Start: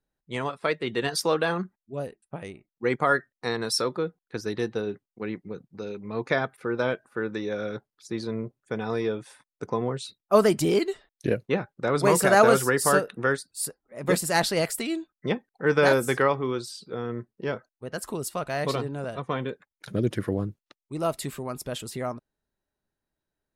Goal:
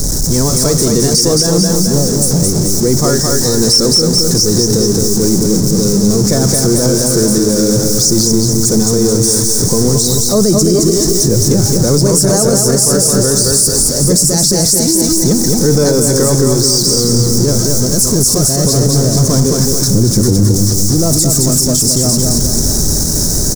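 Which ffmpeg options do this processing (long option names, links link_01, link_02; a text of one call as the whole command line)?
ffmpeg -i in.wav -filter_complex "[0:a]aeval=exprs='val(0)+0.5*0.0596*sgn(val(0))':channel_layout=same,firequalizer=gain_entry='entry(130,0);entry(750,-16);entry(2800,-29);entry(5500,9);entry(12000,-3)':delay=0.05:min_phase=1,acontrast=83,asplit=2[link_01][link_02];[link_02]aecho=0:1:217|434|651|868|1085|1302|1519:0.631|0.322|0.164|0.0837|0.0427|0.0218|0.0111[link_03];[link_01][link_03]amix=inputs=2:normalize=0,alimiter=level_in=12.5dB:limit=-1dB:release=50:level=0:latency=1,volume=-1dB" out.wav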